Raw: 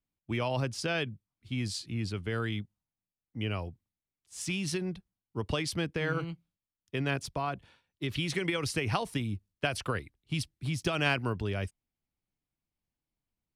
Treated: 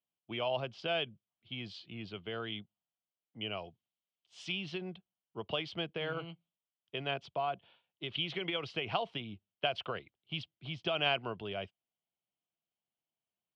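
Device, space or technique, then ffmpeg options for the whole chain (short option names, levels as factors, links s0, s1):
kitchen radio: -filter_complex "[0:a]asettb=1/sr,asplit=3[s0][s1][s2];[s0]atrim=end=3.574[s3];[s1]atrim=start=3.57:end=4.52,asetpts=PTS-STARTPTS,afade=t=in:d=0.004:c=qsin,afade=t=out:st=0.946:d=0.004:c=qsin,aemphasis=mode=production:type=75fm[s4];[s2]atrim=start=4.516[s5];[s3][s4]acrossfade=d=0.004:c1=hsin:c2=qsin[s6];[s6][s5]acrossfade=d=0.004:c1=qsin:c2=hsin,highpass=190,equalizer=f=270:t=q:w=4:g=-8,equalizer=f=680:t=q:w=4:g=8,equalizer=f=1800:t=q:w=4:g=-6,equalizer=f=3100:t=q:w=4:g=10,lowpass=f=3700:w=0.5412,lowpass=f=3700:w=1.3066,volume=0.562"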